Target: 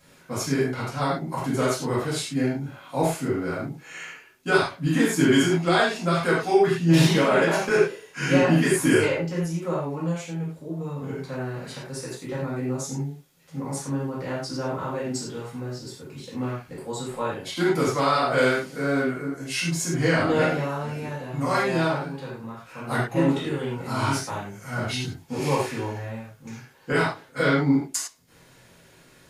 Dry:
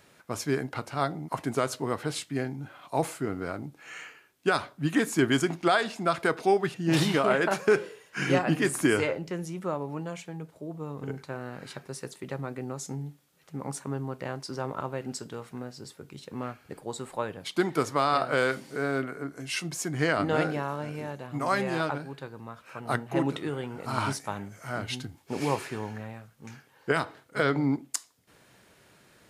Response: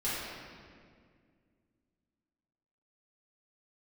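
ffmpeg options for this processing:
-filter_complex "[0:a]bass=frequency=250:gain=2,treble=frequency=4000:gain=4[link_01];[1:a]atrim=start_sample=2205,afade=type=out:start_time=0.19:duration=0.01,atrim=end_sample=8820,asetrate=52920,aresample=44100[link_02];[link_01][link_02]afir=irnorm=-1:irlink=0"

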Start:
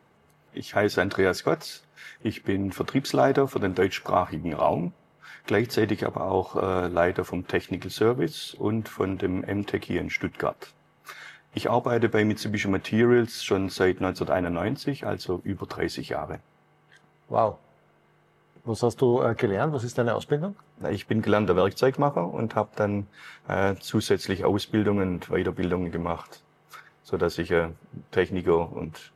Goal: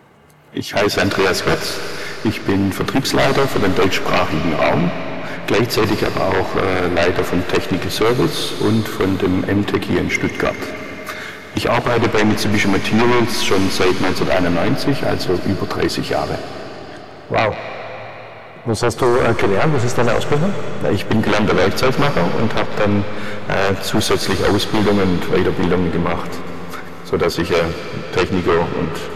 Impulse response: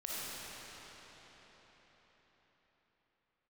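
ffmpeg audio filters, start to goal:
-filter_complex "[0:a]aeval=exprs='0.501*sin(PI/2*4.47*val(0)/0.501)':channel_layout=same,asplit=2[link_01][link_02];[link_02]tiltshelf=frequency=970:gain=-3[link_03];[1:a]atrim=start_sample=2205,adelay=145[link_04];[link_03][link_04]afir=irnorm=-1:irlink=0,volume=-11.5dB[link_05];[link_01][link_05]amix=inputs=2:normalize=0,volume=-4dB"

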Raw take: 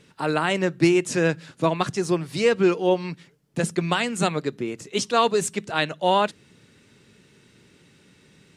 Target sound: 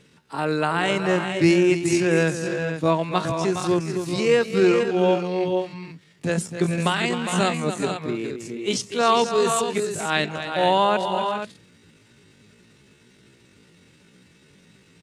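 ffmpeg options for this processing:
ffmpeg -i in.wav -af "aecho=1:1:148.7|236.2|274.1:0.316|0.398|0.355,atempo=0.57" out.wav

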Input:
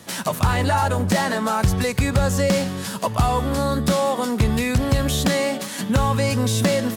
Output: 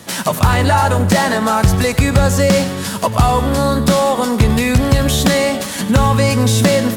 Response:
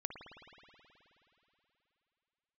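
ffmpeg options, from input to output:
-filter_complex "[0:a]asplit=2[link_01][link_02];[1:a]atrim=start_sample=2205,highshelf=frequency=10000:gain=9,adelay=100[link_03];[link_02][link_03]afir=irnorm=-1:irlink=0,volume=-13dB[link_04];[link_01][link_04]amix=inputs=2:normalize=0,volume=6.5dB"

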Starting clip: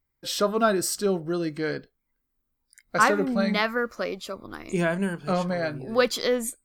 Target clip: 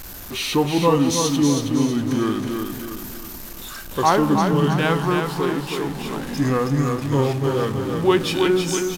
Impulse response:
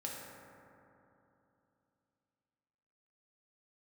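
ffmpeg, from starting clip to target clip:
-filter_complex "[0:a]aeval=exprs='val(0)+0.5*0.0282*sgn(val(0))':channel_layout=same,aecho=1:1:238|476|714|952|1190:0.562|0.242|0.104|0.0447|0.0192,asetrate=32667,aresample=44100,equalizer=frequency=290:width_type=o:width=1:gain=3.5,asplit=2[link_01][link_02];[1:a]atrim=start_sample=2205[link_03];[link_02][link_03]afir=irnorm=-1:irlink=0,volume=-12.5dB[link_04];[link_01][link_04]amix=inputs=2:normalize=0"

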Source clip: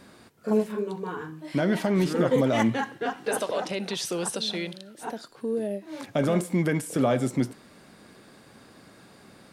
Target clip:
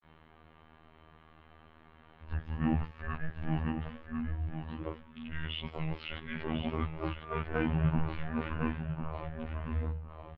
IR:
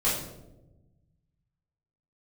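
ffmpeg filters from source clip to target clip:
-filter_complex "[0:a]areverse,bandreject=frequency=215:width_type=h:width=4,bandreject=frequency=430:width_type=h:width=4,bandreject=frequency=645:width_type=h:width=4,bandreject=frequency=860:width_type=h:width=4,bandreject=frequency=1075:width_type=h:width=4,bandreject=frequency=1290:width_type=h:width=4,bandreject=frequency=1505:width_type=h:width=4,bandreject=frequency=1720:width_type=h:width=4,bandreject=frequency=1935:width_type=h:width=4,bandreject=frequency=2150:width_type=h:width=4,bandreject=frequency=2365:width_type=h:width=4,bandreject=frequency=2580:width_type=h:width=4,bandreject=frequency=2795:width_type=h:width=4,bandreject=frequency=3010:width_type=h:width=4,bandreject=frequency=3225:width_type=h:width=4,bandreject=frequency=3440:width_type=h:width=4,bandreject=frequency=3655:width_type=h:width=4,bandreject=frequency=3870:width_type=h:width=4,bandreject=frequency=4085:width_type=h:width=4,bandreject=frequency=4300:width_type=h:width=4,bandreject=frequency=4515:width_type=h:width=4,bandreject=frequency=4730:width_type=h:width=4,bandreject=frequency=4945:width_type=h:width=4,bandreject=frequency=5160:width_type=h:width=4,bandreject=frequency=5375:width_type=h:width=4,bandreject=frequency=5590:width_type=h:width=4,bandreject=frequency=5805:width_type=h:width=4,bandreject=frequency=6020:width_type=h:width=4,bandreject=frequency=6235:width_type=h:width=4,bandreject=frequency=6450:width_type=h:width=4,bandreject=frequency=6665:width_type=h:width=4,bandreject=frequency=6880:width_type=h:width=4,asplit=2[link_01][link_02];[link_02]volume=27dB,asoftclip=hard,volume=-27dB,volume=-4dB[link_03];[link_01][link_03]amix=inputs=2:normalize=0,highpass=frequency=290:width_type=q:width=0.5412,highpass=frequency=290:width_type=q:width=1.307,lowpass=frequency=3500:width_type=q:width=0.5176,lowpass=frequency=3500:width_type=q:width=0.7071,lowpass=frequency=3500:width_type=q:width=1.932,afreqshift=-350,asplit=2[link_04][link_05];[link_05]aecho=0:1:962|1924:0.398|0.0597[link_06];[link_04][link_06]amix=inputs=2:normalize=0,afftfilt=real='hypot(re,im)*cos(PI*b)':imag='0':win_size=2048:overlap=0.75,asetrate=40517,aresample=44100,volume=-5dB"

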